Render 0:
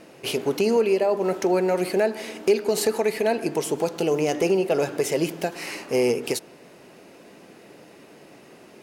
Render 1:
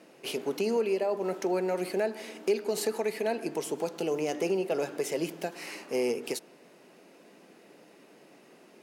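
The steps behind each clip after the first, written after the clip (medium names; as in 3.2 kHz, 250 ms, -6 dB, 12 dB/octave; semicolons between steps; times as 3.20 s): high-pass 160 Hz 24 dB/octave; trim -7.5 dB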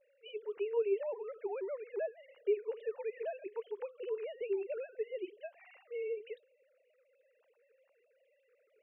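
formants replaced by sine waves; trim -8 dB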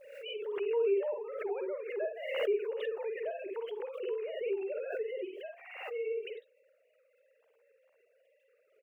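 on a send: early reflections 50 ms -4.5 dB, 63 ms -8.5 dB; on the sum: swell ahead of each attack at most 51 dB/s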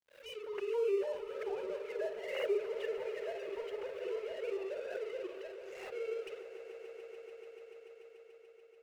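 phase dispersion lows, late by 45 ms, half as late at 300 Hz; crossover distortion -48.5 dBFS; echo with a slow build-up 145 ms, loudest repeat 5, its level -16 dB; trim -2.5 dB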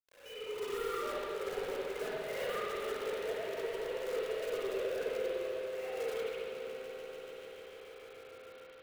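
wavefolder -34 dBFS; companded quantiser 4-bit; reverberation RT60 2.0 s, pre-delay 52 ms, DRR -8 dB; trim -5.5 dB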